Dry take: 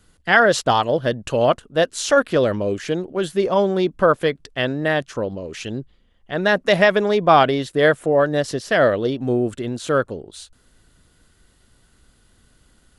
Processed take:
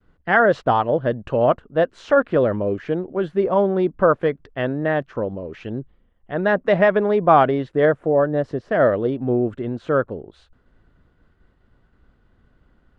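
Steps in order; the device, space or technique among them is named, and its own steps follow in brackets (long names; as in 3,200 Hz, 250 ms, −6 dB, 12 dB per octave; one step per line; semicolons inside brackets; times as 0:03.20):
hearing-loss simulation (low-pass filter 1,600 Hz 12 dB per octave; downward expander −55 dBFS)
0:07.85–0:08.80: parametric band 2,900 Hz −5 dB 2.6 octaves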